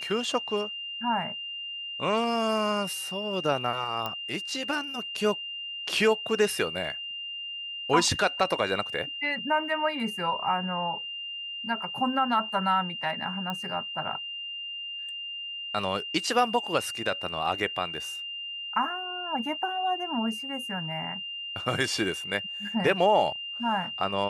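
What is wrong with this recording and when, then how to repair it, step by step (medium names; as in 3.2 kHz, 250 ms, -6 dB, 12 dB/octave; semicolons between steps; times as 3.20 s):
whine 2.8 kHz -34 dBFS
4.06 s: pop -17 dBFS
13.50 s: pop -19 dBFS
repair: de-click; band-stop 2.8 kHz, Q 30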